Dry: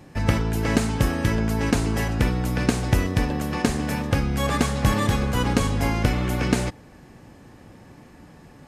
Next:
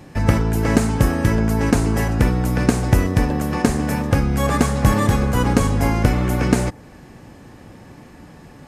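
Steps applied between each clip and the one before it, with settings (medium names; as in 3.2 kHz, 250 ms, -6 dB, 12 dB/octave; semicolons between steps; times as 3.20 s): dynamic bell 3.4 kHz, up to -7 dB, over -46 dBFS, Q 0.98; trim +5 dB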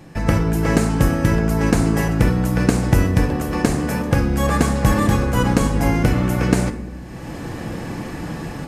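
level rider gain up to 14 dB; reverberation RT60 0.90 s, pre-delay 6 ms, DRR 6.5 dB; trim -1.5 dB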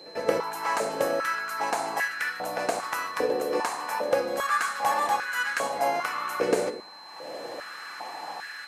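pre-echo 97 ms -16 dB; whistle 4.1 kHz -39 dBFS; step-sequenced high-pass 2.5 Hz 470–1600 Hz; trim -7.5 dB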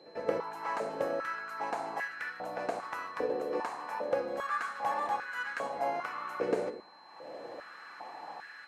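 low-pass 1.7 kHz 6 dB/octave; trim -6 dB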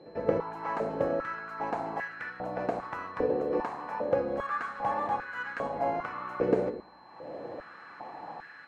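RIAA curve playback; trim +1.5 dB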